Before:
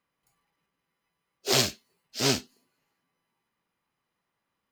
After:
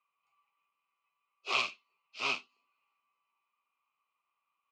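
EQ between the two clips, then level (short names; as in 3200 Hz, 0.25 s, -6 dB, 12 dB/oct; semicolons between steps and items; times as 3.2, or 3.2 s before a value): double band-pass 1700 Hz, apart 1.1 oct; air absorption 52 m; +6.0 dB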